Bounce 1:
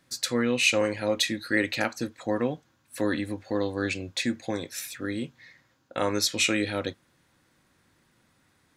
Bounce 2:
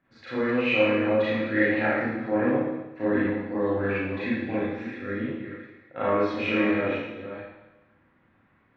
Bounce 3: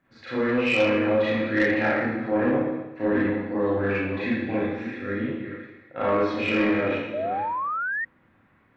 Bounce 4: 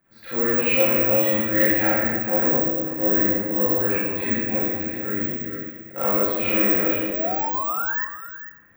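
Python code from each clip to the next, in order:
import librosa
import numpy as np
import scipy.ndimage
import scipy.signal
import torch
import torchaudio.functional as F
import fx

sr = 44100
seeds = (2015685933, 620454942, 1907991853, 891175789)

y1 = fx.reverse_delay(x, sr, ms=351, wet_db=-9.5)
y1 = scipy.signal.sosfilt(scipy.signal.butter(4, 2300.0, 'lowpass', fs=sr, output='sos'), y1)
y1 = fx.rev_schroeder(y1, sr, rt60_s=1.0, comb_ms=28, drr_db=-10.0)
y1 = y1 * librosa.db_to_amplitude(-7.0)
y2 = 10.0 ** (-16.0 / 20.0) * np.tanh(y1 / 10.0 ** (-16.0 / 20.0))
y2 = fx.spec_paint(y2, sr, seeds[0], shape='rise', start_s=7.13, length_s=0.92, low_hz=580.0, high_hz=1900.0, level_db=-30.0)
y2 = y2 * librosa.db_to_amplitude(2.5)
y3 = (np.kron(y2[::2], np.eye(2)[0]) * 2)[:len(y2)]
y3 = y3 + 10.0 ** (-12.0 / 20.0) * np.pad(y3, (int(447 * sr / 1000.0), 0))[:len(y3)]
y3 = fx.room_shoebox(y3, sr, seeds[1], volume_m3=630.0, walls='mixed', distance_m=0.84)
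y3 = y3 * librosa.db_to_amplitude(-1.5)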